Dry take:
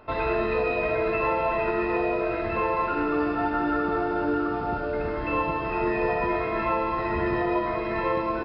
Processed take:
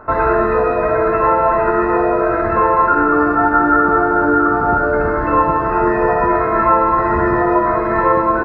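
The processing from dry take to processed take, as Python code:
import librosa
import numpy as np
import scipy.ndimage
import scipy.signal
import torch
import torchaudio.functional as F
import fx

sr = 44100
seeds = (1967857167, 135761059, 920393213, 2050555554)

p1 = fx.rider(x, sr, range_db=10, speed_s=0.5)
p2 = x + (p1 * 10.0 ** (1.0 / 20.0))
p3 = fx.high_shelf_res(p2, sr, hz=2100.0, db=-12.0, q=3.0)
y = p3 * 10.0 ** (3.0 / 20.0)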